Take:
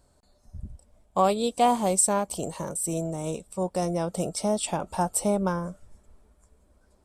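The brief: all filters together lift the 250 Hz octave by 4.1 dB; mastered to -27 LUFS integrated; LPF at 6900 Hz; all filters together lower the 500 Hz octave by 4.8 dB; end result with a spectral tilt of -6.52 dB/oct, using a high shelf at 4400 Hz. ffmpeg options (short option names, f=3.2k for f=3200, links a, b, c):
-af "lowpass=6.9k,equalizer=f=250:t=o:g=7.5,equalizer=f=500:t=o:g=-8,highshelf=f=4.4k:g=-8.5,volume=1dB"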